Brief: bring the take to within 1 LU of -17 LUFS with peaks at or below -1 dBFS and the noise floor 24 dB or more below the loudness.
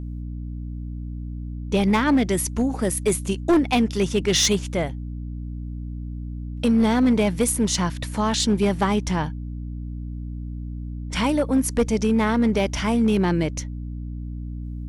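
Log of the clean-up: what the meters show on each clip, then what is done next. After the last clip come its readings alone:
clipped 1.1%; flat tops at -13.0 dBFS; hum 60 Hz; harmonics up to 300 Hz; hum level -29 dBFS; loudness -21.5 LUFS; peak -13.0 dBFS; loudness target -17.0 LUFS
-> clip repair -13 dBFS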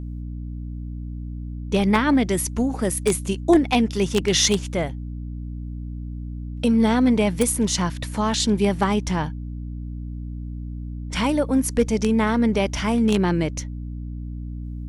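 clipped 0.0%; hum 60 Hz; harmonics up to 300 Hz; hum level -29 dBFS
-> de-hum 60 Hz, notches 5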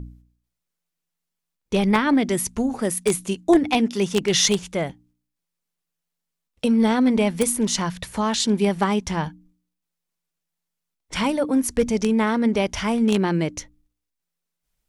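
hum none; loudness -21.5 LUFS; peak -3.5 dBFS; loudness target -17.0 LUFS
-> gain +4.5 dB; limiter -1 dBFS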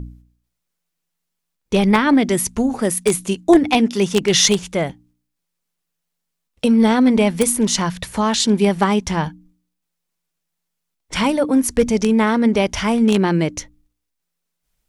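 loudness -17.0 LUFS; peak -1.0 dBFS; noise floor -78 dBFS

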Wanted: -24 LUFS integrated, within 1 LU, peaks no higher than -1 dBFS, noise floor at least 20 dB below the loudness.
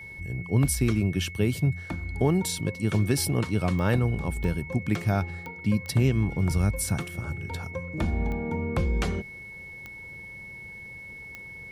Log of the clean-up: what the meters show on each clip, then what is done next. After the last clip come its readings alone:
clicks 7; steady tone 2200 Hz; tone level -40 dBFS; loudness -27.0 LUFS; peak -11.5 dBFS; loudness target -24.0 LUFS
-> de-click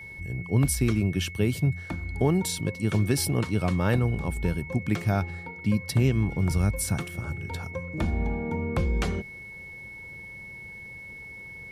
clicks 0; steady tone 2200 Hz; tone level -40 dBFS
-> notch 2200 Hz, Q 30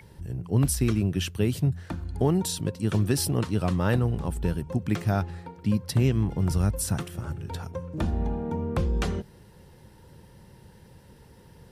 steady tone none; loudness -27.5 LUFS; peak -11.5 dBFS; loudness target -24.0 LUFS
-> gain +3.5 dB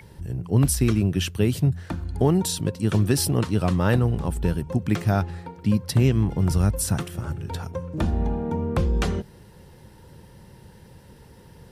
loudness -24.0 LUFS; peak -8.0 dBFS; noise floor -49 dBFS

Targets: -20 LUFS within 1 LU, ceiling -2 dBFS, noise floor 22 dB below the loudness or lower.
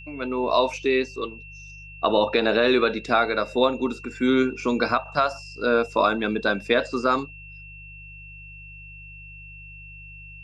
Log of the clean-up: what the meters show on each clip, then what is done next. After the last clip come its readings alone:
hum 50 Hz; harmonics up to 150 Hz; hum level -44 dBFS; steady tone 2700 Hz; tone level -42 dBFS; loudness -23.0 LUFS; peak -8.0 dBFS; loudness target -20.0 LUFS
-> de-hum 50 Hz, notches 3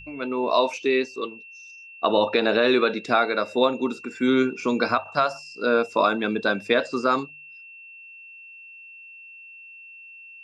hum none; steady tone 2700 Hz; tone level -42 dBFS
-> notch 2700 Hz, Q 30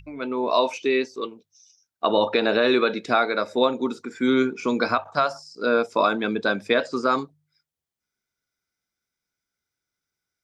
steady tone none; loudness -23.0 LUFS; peak -8.0 dBFS; loudness target -20.0 LUFS
-> gain +3 dB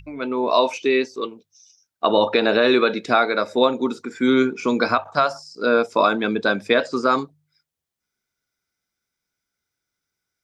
loudness -20.0 LUFS; peak -5.0 dBFS; noise floor -83 dBFS

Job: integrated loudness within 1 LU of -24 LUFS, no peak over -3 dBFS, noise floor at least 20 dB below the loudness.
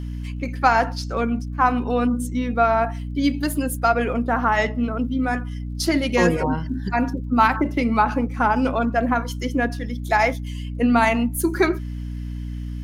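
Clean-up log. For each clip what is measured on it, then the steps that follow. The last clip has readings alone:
ticks 35/s; hum 60 Hz; harmonics up to 300 Hz; hum level -26 dBFS; loudness -21.5 LUFS; peak -3.5 dBFS; loudness target -24.0 LUFS
-> de-click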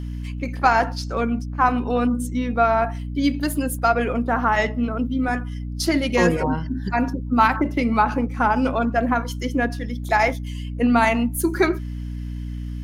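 ticks 0.16/s; hum 60 Hz; harmonics up to 300 Hz; hum level -26 dBFS
-> notches 60/120/180/240/300 Hz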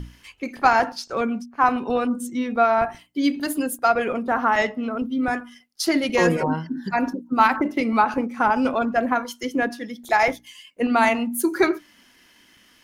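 hum none; loudness -22.0 LUFS; peak -3.0 dBFS; loudness target -24.0 LUFS
-> gain -2 dB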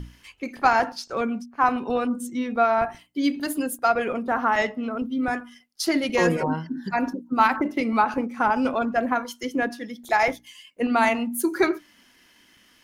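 loudness -24.0 LUFS; peak -5.0 dBFS; noise floor -58 dBFS

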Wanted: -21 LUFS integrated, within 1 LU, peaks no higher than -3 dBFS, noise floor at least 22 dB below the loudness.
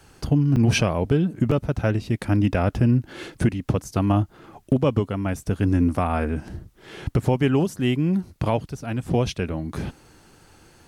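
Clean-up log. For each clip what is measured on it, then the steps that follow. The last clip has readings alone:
dropouts 2; longest dropout 4.8 ms; loudness -23.0 LUFS; peak -9.5 dBFS; loudness target -21.0 LUFS
-> interpolate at 0.56/1.51, 4.8 ms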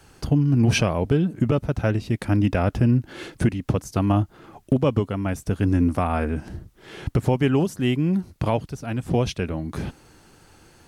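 dropouts 0; loudness -23.0 LUFS; peak -9.5 dBFS; loudness target -21.0 LUFS
-> gain +2 dB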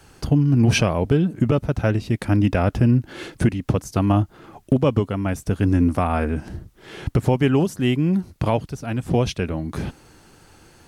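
loudness -21.0 LUFS; peak -7.5 dBFS; noise floor -52 dBFS

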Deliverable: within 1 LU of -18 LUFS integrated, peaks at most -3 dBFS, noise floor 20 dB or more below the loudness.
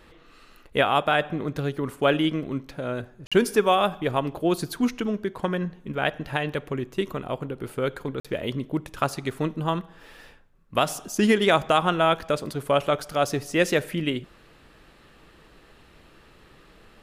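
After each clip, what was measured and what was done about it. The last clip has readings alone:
dropouts 2; longest dropout 46 ms; loudness -25.5 LUFS; peak -7.5 dBFS; loudness target -18.0 LUFS
-> interpolate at 3.27/8.2, 46 ms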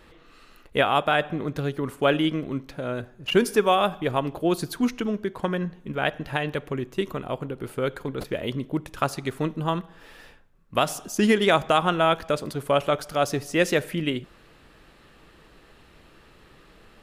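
dropouts 0; loudness -25.5 LUFS; peak -7.5 dBFS; loudness target -18.0 LUFS
-> gain +7.5 dB; limiter -3 dBFS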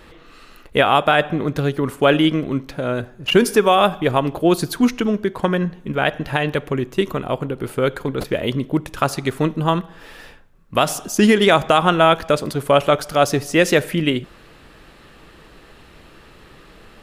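loudness -18.5 LUFS; peak -3.0 dBFS; noise floor -47 dBFS

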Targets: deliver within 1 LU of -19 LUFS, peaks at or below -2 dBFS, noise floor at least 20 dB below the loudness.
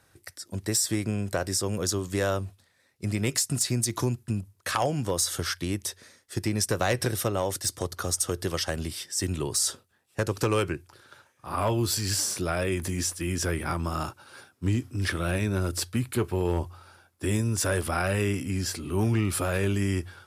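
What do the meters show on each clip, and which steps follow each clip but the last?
clipped 0.2%; flat tops at -16.5 dBFS; loudness -28.0 LUFS; peak -16.5 dBFS; loudness target -19.0 LUFS
-> clip repair -16.5 dBFS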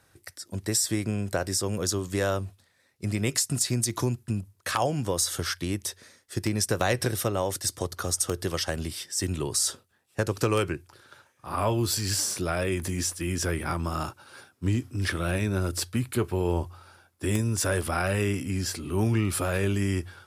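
clipped 0.0%; loudness -28.0 LUFS; peak -7.5 dBFS; loudness target -19.0 LUFS
-> gain +9 dB; limiter -2 dBFS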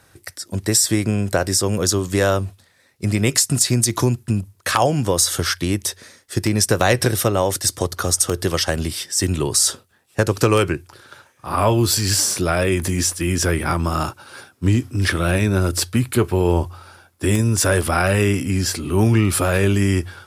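loudness -19.0 LUFS; peak -2.0 dBFS; noise floor -57 dBFS

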